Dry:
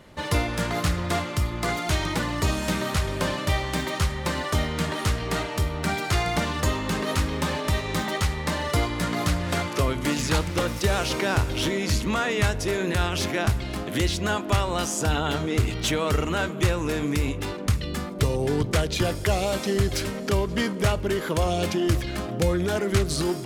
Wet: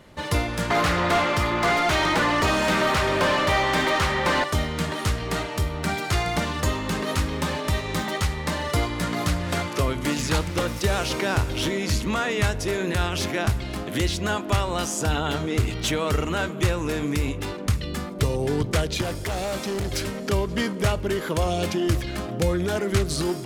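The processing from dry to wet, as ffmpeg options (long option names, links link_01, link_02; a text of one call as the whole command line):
ffmpeg -i in.wav -filter_complex "[0:a]asettb=1/sr,asplit=3[link_01][link_02][link_03];[link_01]atrim=end=0.704[link_04];[link_02]atrim=start=0.7:end=4.44,asetpts=PTS-STARTPTS,afade=type=in:duration=0.004:curve=qsin,afade=type=out:start_time=3.736:duration=0.004:curve=qsin,asplit=2[link_05][link_06];[link_06]highpass=frequency=720:poles=1,volume=23dB,asoftclip=type=tanh:threshold=-11.5dB[link_07];[link_05][link_07]amix=inputs=2:normalize=0,lowpass=frequency=1900:poles=1,volume=-6dB[link_08];[link_03]atrim=start=4.436[link_09];[link_04][link_08]acrossfade=duration=0.004:curve1=hsin:curve2=qsin[link_10];[link_10][link_09]acrossfade=duration=0.004:curve1=qsin:curve2=hsin,asettb=1/sr,asplit=3[link_11][link_12][link_13];[link_11]atrim=end=19.014[link_14];[link_12]atrim=start=19.01:end=19.9,asetpts=PTS-STARTPTS,afade=type=in:duration=0.004:curve=qsin,afade=type=out:start_time=0.886:duration=0.004:curve=qsin,asoftclip=type=hard:threshold=-24.5dB[link_15];[link_13]atrim=start=19.896[link_16];[link_14][link_15]acrossfade=duration=0.004:curve1=hsin:curve2=qsin[link_17];[link_17][link_16]acrossfade=duration=0.004:curve1=qsin:curve2=hsin" out.wav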